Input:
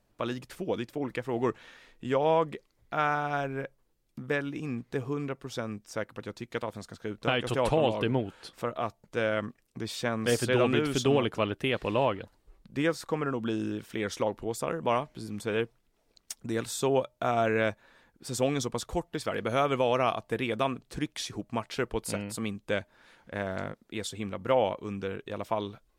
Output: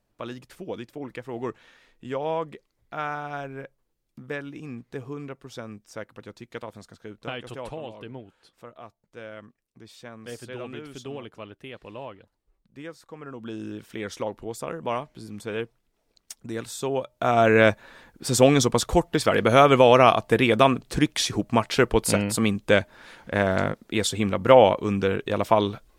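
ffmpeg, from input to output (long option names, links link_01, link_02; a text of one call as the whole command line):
ffmpeg -i in.wav -af "volume=20dB,afade=type=out:start_time=6.81:duration=1.02:silence=0.354813,afade=type=in:start_time=13.15:duration=0.68:silence=0.281838,afade=type=in:start_time=17:duration=0.7:silence=0.251189" out.wav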